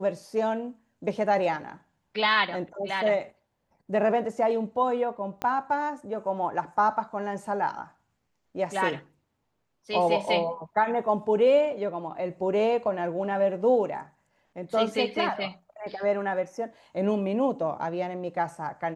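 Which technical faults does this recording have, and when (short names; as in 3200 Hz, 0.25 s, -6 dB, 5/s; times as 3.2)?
5.42 pop -17 dBFS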